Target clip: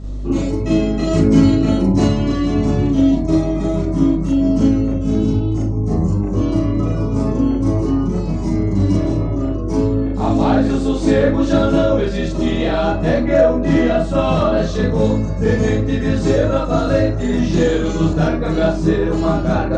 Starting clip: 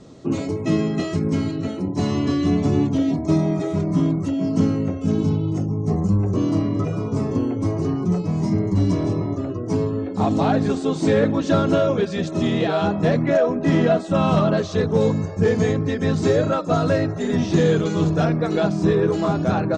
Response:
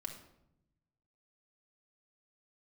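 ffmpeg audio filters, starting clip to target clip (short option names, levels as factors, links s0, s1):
-filter_complex "[0:a]asettb=1/sr,asplit=3[s0][s1][s2];[s0]atrim=end=1.074[s3];[s1]atrim=start=1.07:end=2.04,asetpts=PTS-STARTPTS,afade=t=in:d=0.004:c=qsin,afade=t=out:st=0.966:d=0.004:c=qsin,acontrast=49[s4];[s2]atrim=start=2.036[s5];[s3][s4]acrossfade=d=0.004:c1=hsin:c2=qsin[s6];[s6][s5]acrossfade=d=0.004:c1=qsin:c2=hsin,aeval=exprs='val(0)+0.0355*(sin(2*PI*50*n/s)+sin(2*PI*2*50*n/s)/2+sin(2*PI*3*50*n/s)/3+sin(2*PI*4*50*n/s)/4+sin(2*PI*5*50*n/s)/5)':c=same,asplit=2[s7][s8];[1:a]atrim=start_sample=2205,atrim=end_sample=3087,adelay=37[s9];[s8][s9]afir=irnorm=-1:irlink=0,volume=1.78[s10];[s7][s10]amix=inputs=2:normalize=0,volume=0.841"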